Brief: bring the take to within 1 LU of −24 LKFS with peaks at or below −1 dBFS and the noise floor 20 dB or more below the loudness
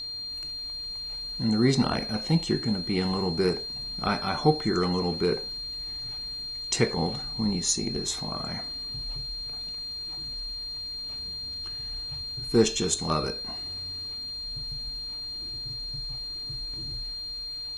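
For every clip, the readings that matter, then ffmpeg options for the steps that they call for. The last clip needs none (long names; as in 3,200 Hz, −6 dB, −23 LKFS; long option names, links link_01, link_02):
interfering tone 4,200 Hz; level of the tone −33 dBFS; integrated loudness −29.0 LKFS; sample peak −8.0 dBFS; target loudness −24.0 LKFS
→ -af "bandreject=frequency=4200:width=30"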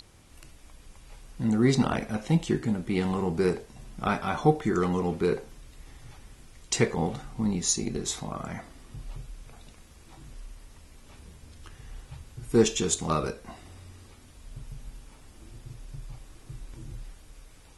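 interfering tone none found; integrated loudness −27.5 LKFS; sample peak −8.5 dBFS; target loudness −24.0 LKFS
→ -af "volume=3.5dB"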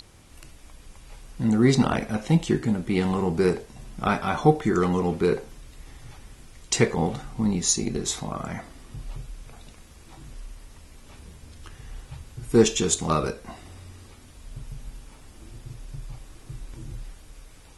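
integrated loudness −24.0 LKFS; sample peak −5.0 dBFS; background noise floor −50 dBFS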